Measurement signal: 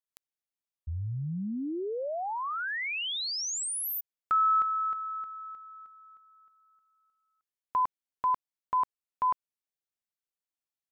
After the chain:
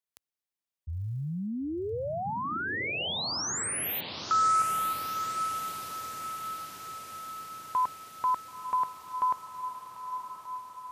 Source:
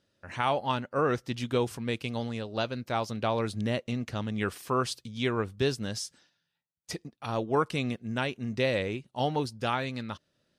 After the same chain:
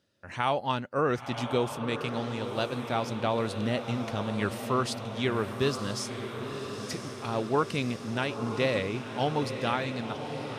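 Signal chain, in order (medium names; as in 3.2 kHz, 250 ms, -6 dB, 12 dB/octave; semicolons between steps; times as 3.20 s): high-pass 58 Hz; on a send: echo that smears into a reverb 992 ms, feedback 64%, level -8 dB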